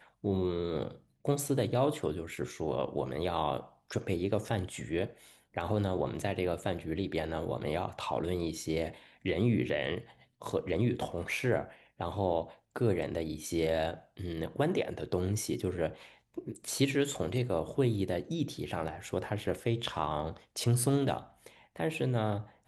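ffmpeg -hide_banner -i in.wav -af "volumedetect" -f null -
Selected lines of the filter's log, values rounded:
mean_volume: -33.2 dB
max_volume: -14.5 dB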